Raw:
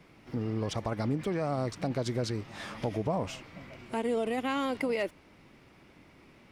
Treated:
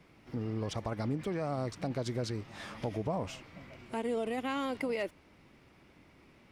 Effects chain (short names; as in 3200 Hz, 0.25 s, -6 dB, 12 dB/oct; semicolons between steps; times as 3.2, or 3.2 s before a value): bell 70 Hz +3 dB; gain -3.5 dB